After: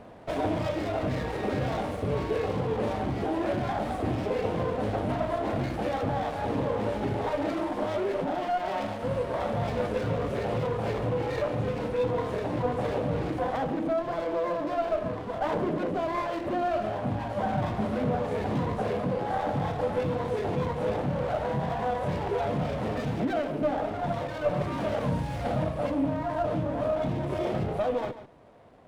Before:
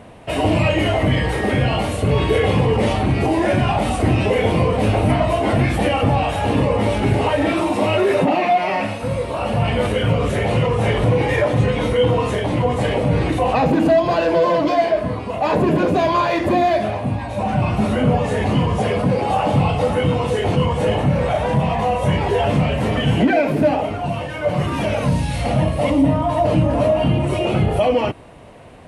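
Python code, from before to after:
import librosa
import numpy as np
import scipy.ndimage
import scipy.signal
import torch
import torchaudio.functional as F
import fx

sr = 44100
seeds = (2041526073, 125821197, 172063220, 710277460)

y = fx.low_shelf(x, sr, hz=200.0, db=-9.0)
y = fx.rider(y, sr, range_db=10, speed_s=0.5)
y = fx.high_shelf(y, sr, hz=2400.0, db=-12.0)
y = y + 10.0 ** (-13.0 / 20.0) * np.pad(y, (int(144 * sr / 1000.0), 0))[:len(y)]
y = fx.running_max(y, sr, window=9)
y = F.gain(torch.from_numpy(y), -8.0).numpy()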